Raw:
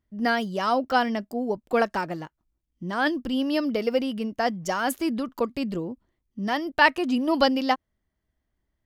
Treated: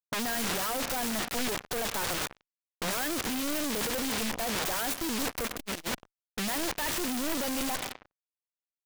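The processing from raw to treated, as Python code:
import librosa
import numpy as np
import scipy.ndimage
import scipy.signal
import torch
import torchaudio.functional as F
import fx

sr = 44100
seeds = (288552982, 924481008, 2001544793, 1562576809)

y = fx.high_shelf(x, sr, hz=5400.0, db=-4.5)
y = fx.rev_schroeder(y, sr, rt60_s=2.3, comb_ms=32, drr_db=18.5)
y = fx.fuzz(y, sr, gain_db=34.0, gate_db=-41.0)
y = fx.env_lowpass(y, sr, base_hz=650.0, full_db=-19.0)
y = (np.mod(10.0 ** (21.0 / 20.0) * y + 1.0, 2.0) - 1.0) / 10.0 ** (21.0 / 20.0)
y = fx.transformer_sat(y, sr, knee_hz=310.0, at=(5.46, 5.87))
y = y * librosa.db_to_amplitude(-3.0)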